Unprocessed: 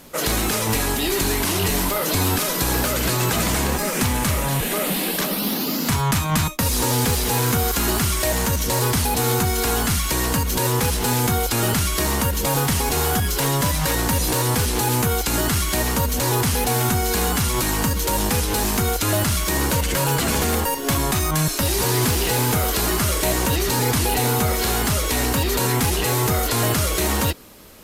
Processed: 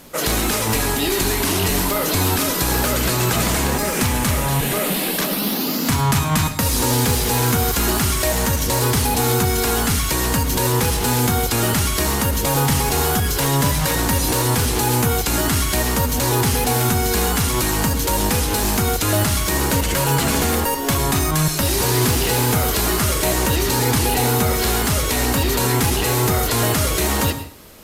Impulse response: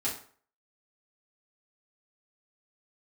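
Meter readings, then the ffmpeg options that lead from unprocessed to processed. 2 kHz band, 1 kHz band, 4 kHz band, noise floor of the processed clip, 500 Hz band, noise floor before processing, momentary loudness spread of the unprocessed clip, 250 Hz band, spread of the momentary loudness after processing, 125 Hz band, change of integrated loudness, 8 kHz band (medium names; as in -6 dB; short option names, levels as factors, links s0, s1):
+2.0 dB, +2.0 dB, +2.0 dB, -22 dBFS, +2.0 dB, -24 dBFS, 2 LU, +2.5 dB, 2 LU, +2.0 dB, +2.0 dB, +2.0 dB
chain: -filter_complex "[0:a]asplit=2[s0][s1];[1:a]atrim=start_sample=2205,adelay=95[s2];[s1][s2]afir=irnorm=-1:irlink=0,volume=0.158[s3];[s0][s3]amix=inputs=2:normalize=0,volume=1.19"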